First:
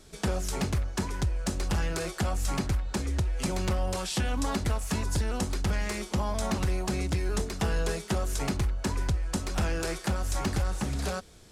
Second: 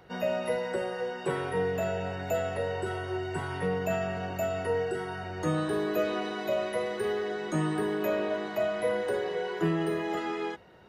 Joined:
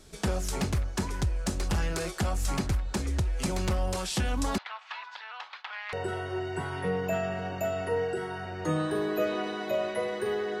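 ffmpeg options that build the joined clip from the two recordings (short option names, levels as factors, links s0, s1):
-filter_complex "[0:a]asettb=1/sr,asplit=3[s0][s1][s2];[s0]atrim=end=4.584[s3];[s1]atrim=start=4.58:end=5.93,asetpts=PTS-STARTPTS,afade=t=in:d=0.004:c=qsin,afade=t=out:st=1.346:d=0.004:c=qsin,asuperpass=centerf=1800:order=8:qfactor=0.62[s4];[s2]atrim=start=5.926[s5];[s3][s4]acrossfade=d=0.004:c1=hsin:c2=qsin[s6];[s6][s5]acrossfade=d=0.004:c1=qsin:c2=hsin,apad=whole_dur=10.6,atrim=end=10.6,atrim=end=5.932[s7];[1:a]atrim=start=2.708:end=7.38[s8];[s7][s8]acrossfade=d=0.004:c1=hsin:c2=hsin"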